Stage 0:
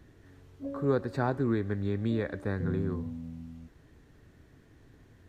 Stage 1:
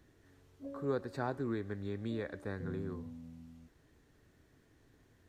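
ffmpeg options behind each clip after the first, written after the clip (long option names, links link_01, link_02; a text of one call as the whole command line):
ffmpeg -i in.wav -af "bass=frequency=250:gain=-4,treble=frequency=4000:gain=4,volume=-6.5dB" out.wav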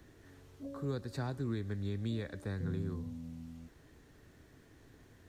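ffmpeg -i in.wav -filter_complex "[0:a]acrossover=split=190|3000[link_01][link_02][link_03];[link_02]acompressor=threshold=-57dB:ratio=2[link_04];[link_01][link_04][link_03]amix=inputs=3:normalize=0,volume=6.5dB" out.wav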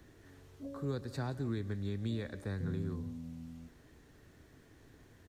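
ffmpeg -i in.wav -af "aecho=1:1:175:0.126" out.wav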